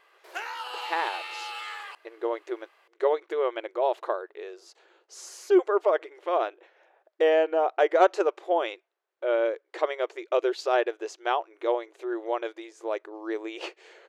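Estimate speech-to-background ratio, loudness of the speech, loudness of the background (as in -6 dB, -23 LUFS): 8.5 dB, -27.5 LUFS, -36.0 LUFS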